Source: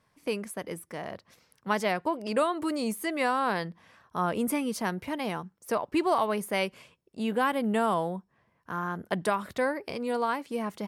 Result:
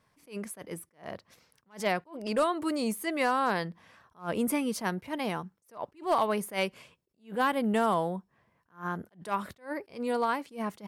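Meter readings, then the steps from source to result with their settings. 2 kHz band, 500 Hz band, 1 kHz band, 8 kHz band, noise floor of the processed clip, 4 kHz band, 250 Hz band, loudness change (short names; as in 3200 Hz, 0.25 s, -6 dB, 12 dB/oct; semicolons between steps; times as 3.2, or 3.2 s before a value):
-2.0 dB, -2.0 dB, -1.5 dB, -0.5 dB, -74 dBFS, -1.5 dB, -2.0 dB, -1.0 dB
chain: overloaded stage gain 18 dB; attack slew limiter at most 220 dB/s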